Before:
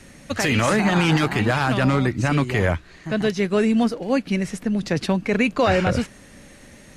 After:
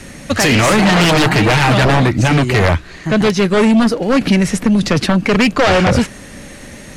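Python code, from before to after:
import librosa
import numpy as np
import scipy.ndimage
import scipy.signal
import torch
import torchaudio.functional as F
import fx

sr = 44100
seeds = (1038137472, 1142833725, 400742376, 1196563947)

y = fx.comb(x, sr, ms=6.5, depth=0.62, at=(0.81, 2.03))
y = fx.fold_sine(y, sr, drive_db=10, ceiling_db=-5.5)
y = fx.band_squash(y, sr, depth_pct=70, at=(4.21, 5.27))
y = y * librosa.db_to_amplitude(-2.0)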